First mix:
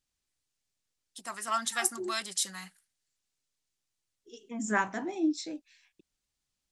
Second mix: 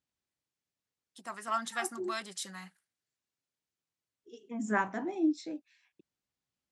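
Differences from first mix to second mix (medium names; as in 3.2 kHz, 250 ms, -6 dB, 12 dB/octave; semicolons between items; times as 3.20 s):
second voice: add high-pass 99 Hz 12 dB/octave; master: add treble shelf 2.9 kHz -11.5 dB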